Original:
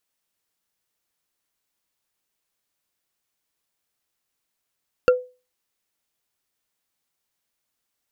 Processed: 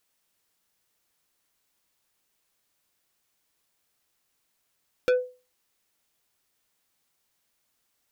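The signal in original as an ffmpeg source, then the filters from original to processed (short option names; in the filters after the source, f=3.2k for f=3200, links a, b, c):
-f lavfi -i "aevalsrc='0.376*pow(10,-3*t/0.31)*sin(2*PI*501*t)+0.178*pow(10,-3*t/0.092)*sin(2*PI*1381.3*t)+0.0841*pow(10,-3*t/0.041)*sin(2*PI*2707.4*t)+0.0398*pow(10,-3*t/0.022)*sin(2*PI*4475.4*t)+0.0188*pow(10,-3*t/0.014)*sin(2*PI*6683.3*t)':d=0.45:s=44100"
-filter_complex "[0:a]asplit=2[a][b];[b]alimiter=limit=-15dB:level=0:latency=1:release=33,volume=-2.5dB[c];[a][c]amix=inputs=2:normalize=0,asoftclip=type=tanh:threshold=-19.5dB"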